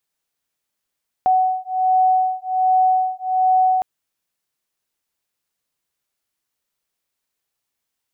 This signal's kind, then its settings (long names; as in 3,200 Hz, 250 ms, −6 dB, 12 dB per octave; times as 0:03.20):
two tones that beat 746 Hz, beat 1.3 Hz, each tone −17.5 dBFS 2.56 s